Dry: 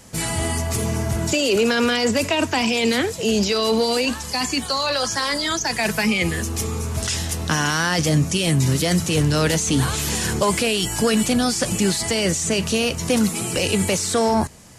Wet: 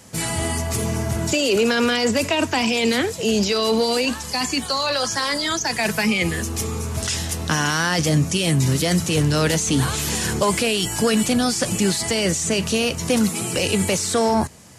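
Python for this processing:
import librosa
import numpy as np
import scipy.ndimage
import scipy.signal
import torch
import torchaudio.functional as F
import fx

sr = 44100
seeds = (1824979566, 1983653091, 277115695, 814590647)

y = scipy.signal.sosfilt(scipy.signal.butter(2, 63.0, 'highpass', fs=sr, output='sos'), x)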